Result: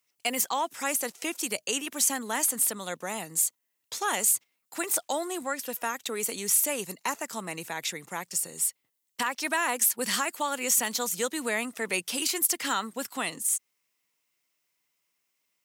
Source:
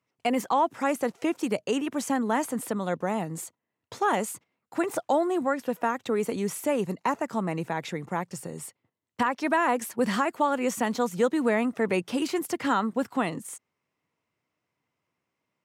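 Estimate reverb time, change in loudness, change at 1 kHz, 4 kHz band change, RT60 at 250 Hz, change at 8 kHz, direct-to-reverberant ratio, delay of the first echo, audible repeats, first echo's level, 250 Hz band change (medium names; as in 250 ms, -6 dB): no reverb, 0.0 dB, -5.0 dB, +7.0 dB, no reverb, +13.5 dB, no reverb, no echo, no echo, no echo, -10.0 dB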